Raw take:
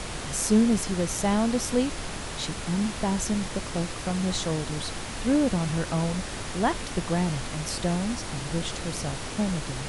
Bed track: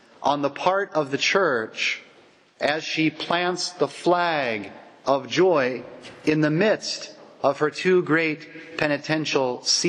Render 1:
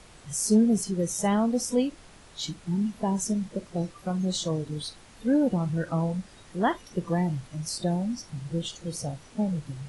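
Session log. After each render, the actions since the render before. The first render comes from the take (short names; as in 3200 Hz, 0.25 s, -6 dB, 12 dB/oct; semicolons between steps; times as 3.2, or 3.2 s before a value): noise print and reduce 17 dB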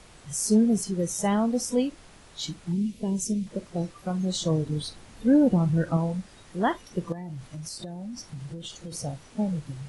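2.72–3.47 band shelf 1100 Hz -14 dB; 4.41–5.97 low shelf 470 Hz +5.5 dB; 7.12–8.92 compressor 12:1, threshold -33 dBFS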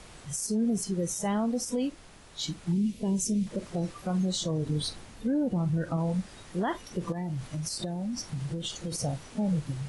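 vocal rider within 4 dB 0.5 s; limiter -21 dBFS, peak gain reduction 10 dB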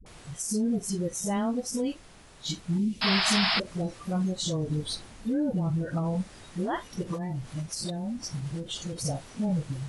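dispersion highs, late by 62 ms, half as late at 390 Hz; 3.01–3.6 painted sound noise 620–5400 Hz -26 dBFS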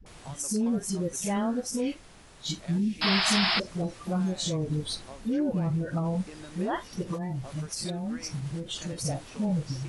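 add bed track -26 dB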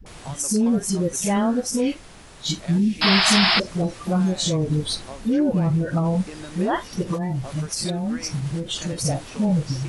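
gain +7.5 dB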